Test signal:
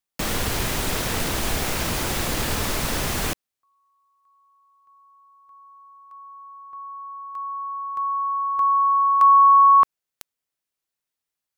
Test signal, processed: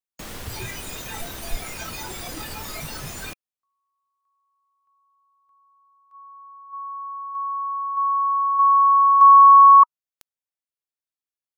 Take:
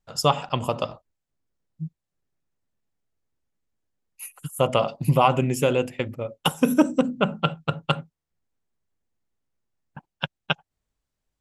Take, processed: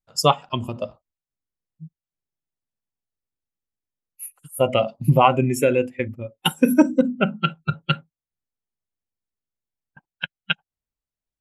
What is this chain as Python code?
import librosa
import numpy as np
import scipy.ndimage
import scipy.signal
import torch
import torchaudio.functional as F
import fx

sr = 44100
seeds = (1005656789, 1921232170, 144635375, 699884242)

y = fx.noise_reduce_blind(x, sr, reduce_db=15)
y = y * 10.0 ** (3.5 / 20.0)